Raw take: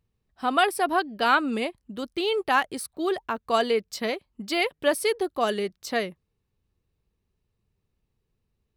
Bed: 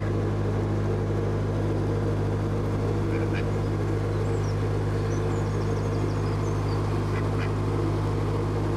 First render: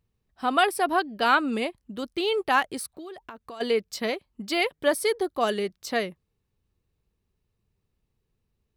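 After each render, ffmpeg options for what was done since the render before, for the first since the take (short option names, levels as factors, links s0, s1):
-filter_complex "[0:a]asplit=3[s0][s1][s2];[s0]afade=t=out:st=2.95:d=0.02[s3];[s1]acompressor=threshold=0.0141:ratio=10:attack=3.2:release=140:knee=1:detection=peak,afade=t=in:st=2.95:d=0.02,afade=t=out:st=3.6:d=0.02[s4];[s2]afade=t=in:st=3.6:d=0.02[s5];[s3][s4][s5]amix=inputs=3:normalize=0,asettb=1/sr,asplit=3[s6][s7][s8];[s6]atrim=end=4.764[s9];[s7]atrim=start=4.76:end=5.35,asetpts=PTS-STARTPTS,afade=t=in:d=0.004:c=qsin,afade=t=out:st=0.586:d=0.004:c=qsin,bandreject=f=2700:w=6[s10];[s8]atrim=start=5.346[s11];[s9][s10]acrossfade=d=0.004:c1=hsin:c2=qsin[s12];[s12][s11]acrossfade=d=0.004:c1=qsin:c2=hsin"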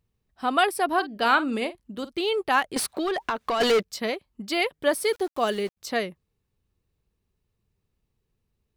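-filter_complex "[0:a]asettb=1/sr,asplit=3[s0][s1][s2];[s0]atrim=end=0.934[s3];[s1]atrim=start=0.93:end=2.18,asetpts=PTS-STARTPTS,afade=t=in:d=0.004:c=qsin,afade=t=out:st=1.246:d=0.004:c=qsin,asplit=2[s4][s5];[s5]adelay=48,volume=0.2[s6];[s4][s6]amix=inputs=2:normalize=0,atrim=end_sample=55125[s7];[s2]atrim=start=2.176[s8];[s3][s7]acrossfade=d=0.004:c1=hsin:c2=qsin[s9];[s9][s8]acrossfade=d=0.004:c1=qsin:c2=hsin,asettb=1/sr,asplit=3[s10][s11][s12];[s10]atrim=end=2.764[s13];[s11]atrim=start=2.76:end=3.83,asetpts=PTS-STARTPTS,afade=t=in:d=0.004:c=qsin,afade=t=out:st=1.066:d=0.004:c=qsin,asplit=2[s14][s15];[s15]highpass=f=720:p=1,volume=22.4,asoftclip=type=tanh:threshold=0.2[s16];[s14][s16]amix=inputs=2:normalize=0,lowpass=f=4400:p=1,volume=0.501[s17];[s12]atrim=start=3.826[s18];[s13][s17]acrossfade=d=0.004:c1=hsin:c2=qsin[s19];[s19][s18]acrossfade=d=0.004:c1=qsin:c2=hsin,asettb=1/sr,asplit=3[s20][s21][s22];[s20]atrim=end=4.934[s23];[s21]atrim=start=4.93:end=5.77,asetpts=PTS-STARTPTS,afade=t=in:d=0.004:c=qsin,afade=t=out:st=0.836:d=0.004:c=qsin,aeval=exprs='val(0)*gte(abs(val(0)),0.00841)':c=same[s24];[s22]atrim=start=5.766[s25];[s23][s24]acrossfade=d=0.004:c1=hsin:c2=qsin[s26];[s26][s25]acrossfade=d=0.004:c1=qsin:c2=hsin"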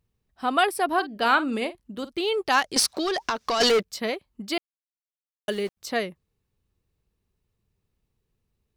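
-filter_complex "[0:a]asettb=1/sr,asplit=3[s0][s1][s2];[s0]atrim=end=2.464[s3];[s1]atrim=start=2.46:end=3.69,asetpts=PTS-STARTPTS,afade=t=in:d=0.004:c=qsin,afade=t=out:st=1.226:d=0.004:c=qsin,equalizer=f=5500:t=o:w=0.89:g=14[s4];[s2]atrim=start=3.686[s5];[s3][s4]acrossfade=d=0.004:c1=hsin:c2=qsin[s6];[s6][s5]acrossfade=d=0.004:c1=qsin:c2=hsin,asplit=3[s7][s8][s9];[s7]atrim=end=4.58,asetpts=PTS-STARTPTS,afade=t=out:st=4.576:d=0.004:c=hsin[s10];[s8]atrim=start=4.58:end=5.48,asetpts=PTS-STARTPTS,volume=0[s11];[s9]atrim=start=5.48,asetpts=PTS-STARTPTS,afade=t=in:d=0.004:c=hsin[s12];[s10][s11][s12]concat=n=3:v=0:a=1"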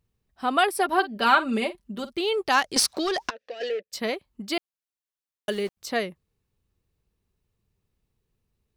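-filter_complex "[0:a]asettb=1/sr,asplit=3[s0][s1][s2];[s0]atrim=end=0.734[s3];[s1]atrim=start=0.73:end=2.13,asetpts=PTS-STARTPTS,afade=t=in:d=0.004:c=qsin,afade=t=out:st=1.396:d=0.004:c=qsin,aecho=1:1:5.1:0.65,atrim=end_sample=61740[s4];[s2]atrim=start=2.126[s5];[s3][s4]acrossfade=d=0.004:c1=hsin:c2=qsin[s6];[s6][s5]acrossfade=d=0.004:c1=qsin:c2=hsin,asplit=3[s7][s8][s9];[s7]afade=t=out:st=3.29:d=0.02[s10];[s8]asplit=3[s11][s12][s13];[s11]bandpass=f=530:t=q:w=8,volume=1[s14];[s12]bandpass=f=1840:t=q:w=8,volume=0.501[s15];[s13]bandpass=f=2480:t=q:w=8,volume=0.355[s16];[s14][s15][s16]amix=inputs=3:normalize=0,afade=t=in:st=3.29:d=0.02,afade=t=out:st=3.92:d=0.02[s17];[s9]afade=t=in:st=3.92:d=0.02[s18];[s10][s17][s18]amix=inputs=3:normalize=0"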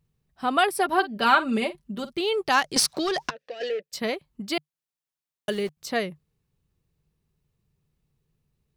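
-af "equalizer=f=150:w=4.2:g=12"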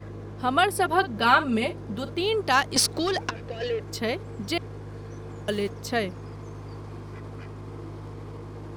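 -filter_complex "[1:a]volume=0.224[s0];[0:a][s0]amix=inputs=2:normalize=0"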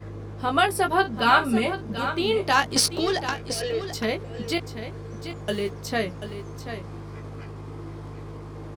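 -filter_complex "[0:a]asplit=2[s0][s1];[s1]adelay=18,volume=0.473[s2];[s0][s2]amix=inputs=2:normalize=0,aecho=1:1:737:0.299"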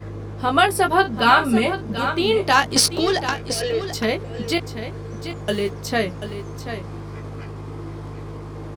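-af "volume=1.68,alimiter=limit=0.708:level=0:latency=1"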